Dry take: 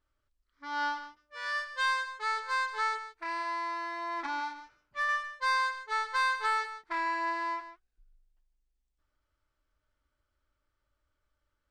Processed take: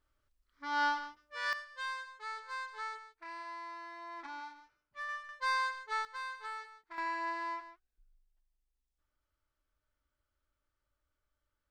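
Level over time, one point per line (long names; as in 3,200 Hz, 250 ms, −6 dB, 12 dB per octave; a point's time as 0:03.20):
+1 dB
from 0:01.53 −10.5 dB
from 0:05.29 −4 dB
from 0:06.05 −13.5 dB
from 0:06.98 −5 dB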